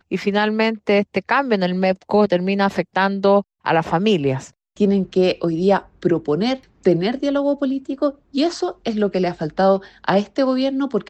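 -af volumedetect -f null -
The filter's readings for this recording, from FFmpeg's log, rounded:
mean_volume: -19.1 dB
max_volume: -4.1 dB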